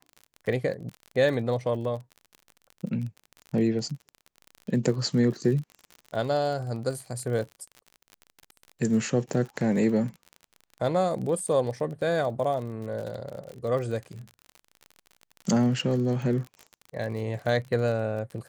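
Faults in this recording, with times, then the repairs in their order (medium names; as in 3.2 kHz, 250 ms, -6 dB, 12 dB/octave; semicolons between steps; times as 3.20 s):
crackle 39 per s -34 dBFS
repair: de-click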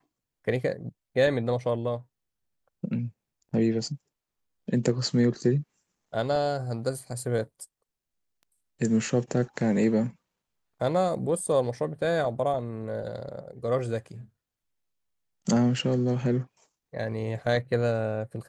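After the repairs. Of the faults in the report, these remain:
nothing left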